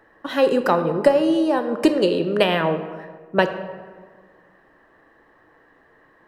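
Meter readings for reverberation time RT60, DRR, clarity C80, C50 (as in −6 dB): 1.6 s, 8.0 dB, 11.0 dB, 10.0 dB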